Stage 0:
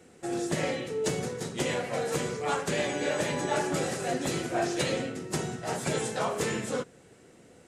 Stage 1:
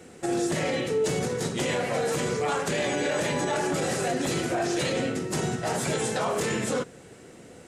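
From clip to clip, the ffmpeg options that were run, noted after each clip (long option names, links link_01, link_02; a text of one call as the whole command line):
ffmpeg -i in.wav -af "alimiter=level_in=2dB:limit=-24dB:level=0:latency=1:release=43,volume=-2dB,volume=7.5dB" out.wav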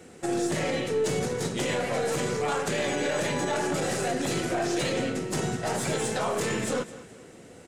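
ffmpeg -i in.wav -af "aecho=1:1:210|420|630:0.15|0.0539|0.0194,aeval=exprs='0.141*(cos(1*acos(clip(val(0)/0.141,-1,1)))-cos(1*PI/2))+0.00501*(cos(6*acos(clip(val(0)/0.141,-1,1)))-cos(6*PI/2))':channel_layout=same,volume=-1dB" out.wav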